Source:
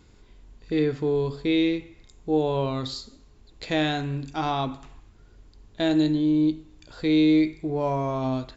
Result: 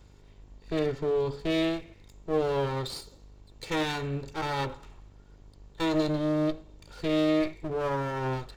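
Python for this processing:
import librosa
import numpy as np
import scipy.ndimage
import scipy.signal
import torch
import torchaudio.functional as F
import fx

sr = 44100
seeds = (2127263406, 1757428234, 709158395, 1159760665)

y = fx.lower_of_two(x, sr, delay_ms=2.2)
y = fx.dmg_buzz(y, sr, base_hz=50.0, harmonics=23, level_db=-53.0, tilt_db=-7, odd_only=False)
y = F.gain(torch.from_numpy(y), -2.0).numpy()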